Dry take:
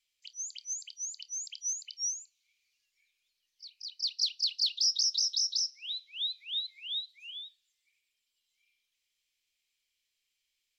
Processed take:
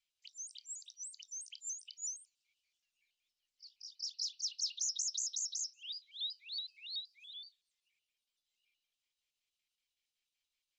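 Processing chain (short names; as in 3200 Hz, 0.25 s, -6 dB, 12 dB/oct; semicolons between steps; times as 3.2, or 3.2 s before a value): trilling pitch shifter +3.5 st, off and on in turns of 94 ms; high shelf 8900 Hz -7 dB; gain -5.5 dB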